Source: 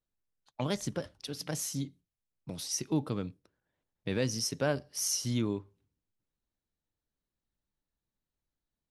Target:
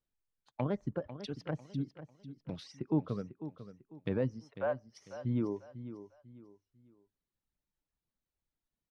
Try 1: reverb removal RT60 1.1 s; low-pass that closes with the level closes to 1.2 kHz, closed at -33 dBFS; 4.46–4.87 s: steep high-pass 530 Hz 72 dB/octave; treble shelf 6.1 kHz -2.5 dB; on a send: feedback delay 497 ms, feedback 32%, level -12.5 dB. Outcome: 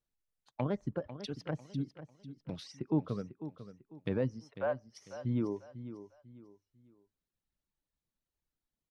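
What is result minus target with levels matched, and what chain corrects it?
8 kHz band +3.0 dB
reverb removal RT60 1.1 s; low-pass that closes with the level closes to 1.2 kHz, closed at -33 dBFS; 4.46–4.87 s: steep high-pass 530 Hz 72 dB/octave; treble shelf 6.1 kHz -9 dB; on a send: feedback delay 497 ms, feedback 32%, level -12.5 dB

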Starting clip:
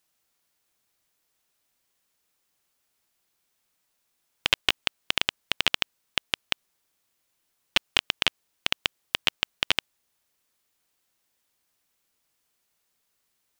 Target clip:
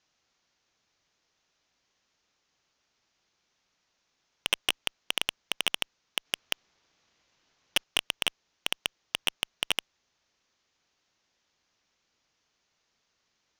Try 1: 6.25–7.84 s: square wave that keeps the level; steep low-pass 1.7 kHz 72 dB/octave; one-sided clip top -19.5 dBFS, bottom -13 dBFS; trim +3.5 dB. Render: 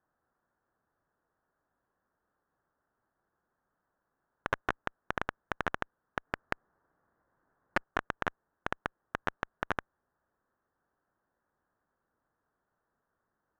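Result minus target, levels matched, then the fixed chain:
8 kHz band -15.0 dB
6.25–7.84 s: square wave that keeps the level; steep low-pass 6.7 kHz 72 dB/octave; one-sided clip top -19.5 dBFS, bottom -13 dBFS; trim +3.5 dB

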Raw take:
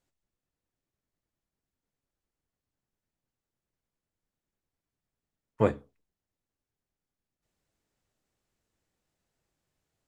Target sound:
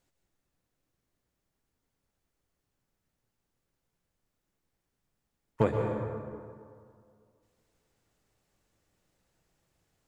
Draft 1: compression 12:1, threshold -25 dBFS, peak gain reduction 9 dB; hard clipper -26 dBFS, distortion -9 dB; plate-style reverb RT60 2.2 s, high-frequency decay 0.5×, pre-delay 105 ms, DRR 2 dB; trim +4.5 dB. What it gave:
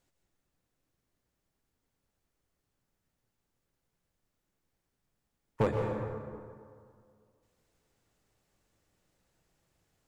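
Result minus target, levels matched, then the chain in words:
hard clipper: distortion +12 dB
compression 12:1, threshold -25 dBFS, peak gain reduction 9 dB; hard clipper -19.5 dBFS, distortion -22 dB; plate-style reverb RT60 2.2 s, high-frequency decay 0.5×, pre-delay 105 ms, DRR 2 dB; trim +4.5 dB

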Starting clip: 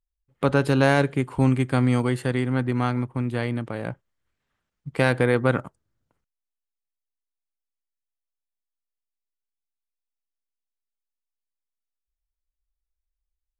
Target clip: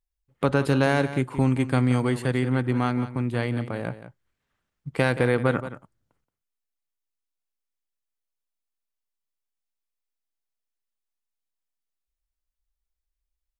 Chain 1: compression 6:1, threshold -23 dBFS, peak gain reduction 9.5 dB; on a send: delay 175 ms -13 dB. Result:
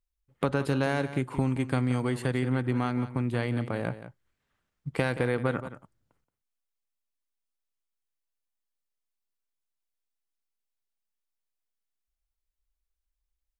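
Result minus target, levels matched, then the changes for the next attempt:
compression: peak gain reduction +6 dB
change: compression 6:1, threshold -15.5 dBFS, peak gain reduction 3.5 dB

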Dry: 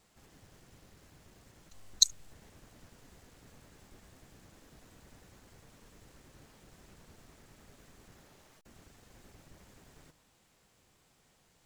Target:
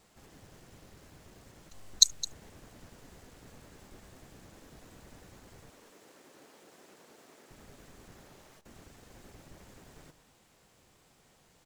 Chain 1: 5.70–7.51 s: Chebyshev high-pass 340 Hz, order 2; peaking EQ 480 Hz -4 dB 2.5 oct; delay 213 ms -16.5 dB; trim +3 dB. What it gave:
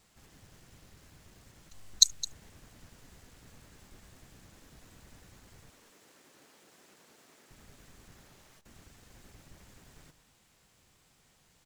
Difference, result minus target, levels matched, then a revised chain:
500 Hz band -6.0 dB
5.70–7.51 s: Chebyshev high-pass 340 Hz, order 2; peaking EQ 480 Hz +2.5 dB 2.5 oct; delay 213 ms -16.5 dB; trim +3 dB

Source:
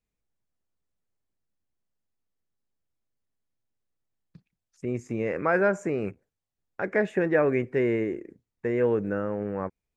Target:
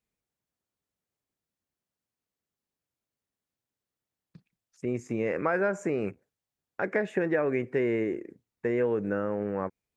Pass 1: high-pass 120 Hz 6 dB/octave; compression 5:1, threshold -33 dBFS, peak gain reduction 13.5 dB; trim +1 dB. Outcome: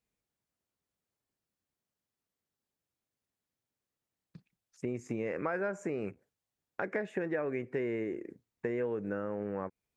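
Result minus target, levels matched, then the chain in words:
compression: peak gain reduction +7 dB
high-pass 120 Hz 6 dB/octave; compression 5:1, threshold -24 dBFS, peak gain reduction 6.5 dB; trim +1 dB

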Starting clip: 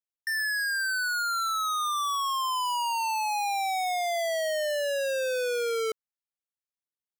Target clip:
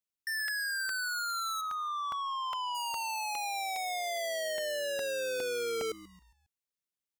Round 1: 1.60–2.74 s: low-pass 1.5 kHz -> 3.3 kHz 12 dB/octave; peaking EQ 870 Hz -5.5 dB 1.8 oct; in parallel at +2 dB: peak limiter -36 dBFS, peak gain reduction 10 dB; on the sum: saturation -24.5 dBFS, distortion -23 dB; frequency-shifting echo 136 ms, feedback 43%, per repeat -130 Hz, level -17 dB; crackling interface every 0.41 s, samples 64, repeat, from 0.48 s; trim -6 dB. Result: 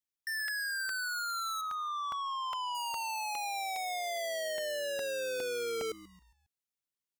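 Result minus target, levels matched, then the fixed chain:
saturation: distortion +18 dB
1.60–2.74 s: low-pass 1.5 kHz -> 3.3 kHz 12 dB/octave; peaking EQ 870 Hz -5.5 dB 1.8 oct; in parallel at +2 dB: peak limiter -36 dBFS, peak gain reduction 10 dB; on the sum: saturation -14.5 dBFS, distortion -41 dB; frequency-shifting echo 136 ms, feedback 43%, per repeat -130 Hz, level -17 dB; crackling interface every 0.41 s, samples 64, repeat, from 0.48 s; trim -6 dB

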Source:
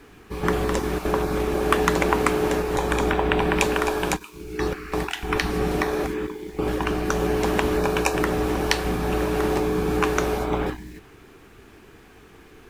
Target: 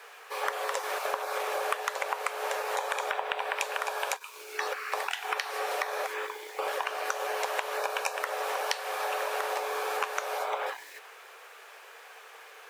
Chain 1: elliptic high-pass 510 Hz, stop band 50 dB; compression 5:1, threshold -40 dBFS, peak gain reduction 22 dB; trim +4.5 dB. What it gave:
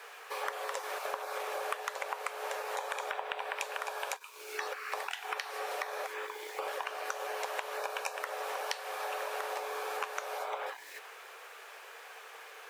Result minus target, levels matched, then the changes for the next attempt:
compression: peak gain reduction +5.5 dB
change: compression 5:1, threshold -33 dBFS, peak gain reduction 16.5 dB

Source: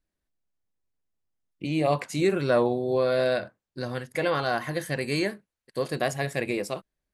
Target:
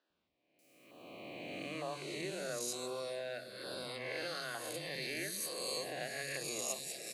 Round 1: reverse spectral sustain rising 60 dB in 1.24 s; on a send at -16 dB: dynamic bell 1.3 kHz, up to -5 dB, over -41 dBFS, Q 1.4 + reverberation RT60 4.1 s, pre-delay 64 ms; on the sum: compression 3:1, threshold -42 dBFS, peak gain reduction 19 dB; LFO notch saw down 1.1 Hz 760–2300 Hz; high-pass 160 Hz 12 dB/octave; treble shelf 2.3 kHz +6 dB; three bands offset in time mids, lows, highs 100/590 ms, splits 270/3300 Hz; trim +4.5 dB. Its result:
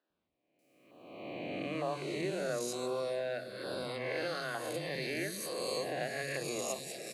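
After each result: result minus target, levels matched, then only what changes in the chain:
compression: peak gain reduction -6.5 dB; 4 kHz band -3.5 dB
change: compression 3:1, threshold -52 dBFS, peak gain reduction 25.5 dB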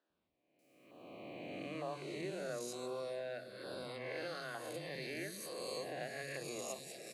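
4 kHz band -3.5 dB
change: treble shelf 2.3 kHz +15.5 dB

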